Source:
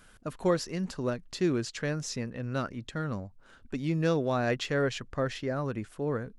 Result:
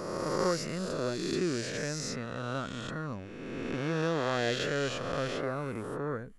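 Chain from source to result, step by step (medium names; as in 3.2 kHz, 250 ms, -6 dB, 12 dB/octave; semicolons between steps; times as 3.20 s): reverse spectral sustain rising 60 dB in 2.18 s; trim -5.5 dB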